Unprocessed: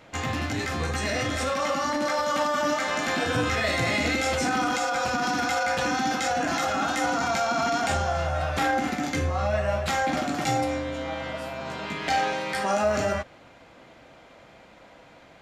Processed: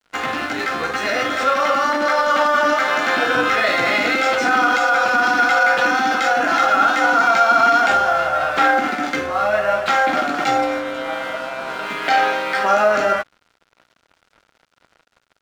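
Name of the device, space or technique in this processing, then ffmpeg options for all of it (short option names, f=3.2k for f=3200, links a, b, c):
pocket radio on a weak battery: -af "highpass=320,lowpass=4.2k,aeval=exprs='sgn(val(0))*max(abs(val(0))-0.00473,0)':c=same,equalizer=f=1.4k:t=o:w=0.26:g=9,volume=8.5dB"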